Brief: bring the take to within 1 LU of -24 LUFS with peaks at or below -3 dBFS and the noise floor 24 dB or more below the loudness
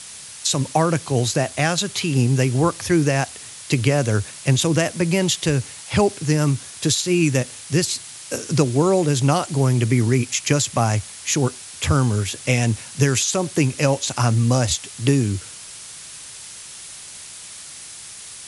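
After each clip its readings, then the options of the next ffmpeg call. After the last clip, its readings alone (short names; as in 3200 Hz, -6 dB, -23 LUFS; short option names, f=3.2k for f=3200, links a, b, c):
noise floor -38 dBFS; noise floor target -44 dBFS; loudness -20.0 LUFS; peak -2.0 dBFS; loudness target -24.0 LUFS
-> -af "afftdn=nr=6:nf=-38"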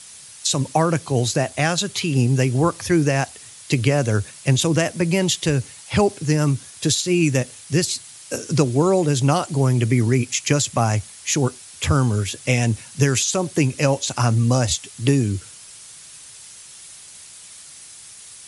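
noise floor -42 dBFS; noise floor target -45 dBFS
-> -af "afftdn=nr=6:nf=-42"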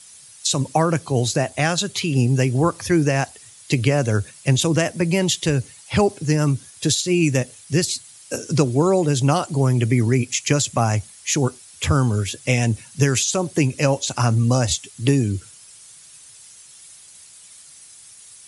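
noise floor -46 dBFS; loudness -20.5 LUFS; peak -2.5 dBFS; loudness target -24.0 LUFS
-> -af "volume=-3.5dB"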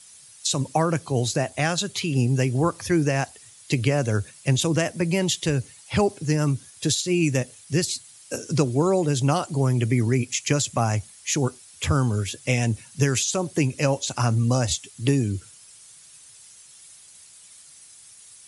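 loudness -24.0 LUFS; peak -6.0 dBFS; noise floor -49 dBFS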